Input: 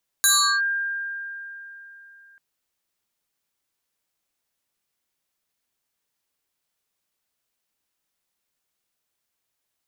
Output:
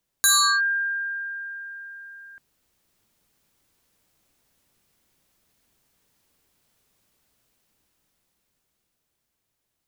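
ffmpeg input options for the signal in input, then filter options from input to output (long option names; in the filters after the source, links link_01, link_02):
-f lavfi -i "aevalsrc='0.211*pow(10,-3*t/3.49)*sin(2*PI*1600*t+4.2*clip(1-t/0.37,0,1)*sin(2*PI*1.73*1600*t))':duration=2.14:sample_rate=44100"
-af "lowshelf=frequency=400:gain=11,dynaudnorm=framelen=330:gausssize=13:maxgain=10dB"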